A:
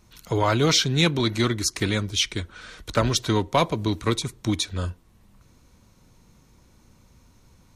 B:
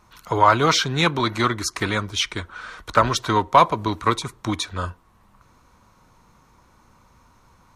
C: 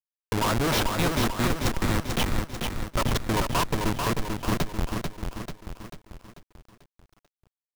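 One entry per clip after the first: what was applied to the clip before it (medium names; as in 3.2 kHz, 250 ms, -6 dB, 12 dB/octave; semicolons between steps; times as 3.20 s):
peaking EQ 1.1 kHz +14 dB 1.5 oct; trim -2.5 dB
Schmitt trigger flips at -18 dBFS; bit-crushed delay 441 ms, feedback 55%, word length 9-bit, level -4.5 dB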